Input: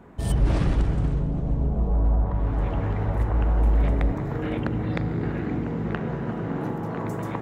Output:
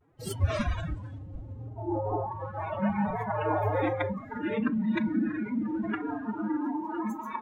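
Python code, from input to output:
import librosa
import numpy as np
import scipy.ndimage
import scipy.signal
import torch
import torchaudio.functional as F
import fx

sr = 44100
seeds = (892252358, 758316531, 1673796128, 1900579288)

y = fx.pitch_keep_formants(x, sr, semitones=11.5)
y = fx.noise_reduce_blind(y, sr, reduce_db=19)
y = fx.vibrato(y, sr, rate_hz=0.43, depth_cents=32.0)
y = y * librosa.db_to_amplitude(2.0)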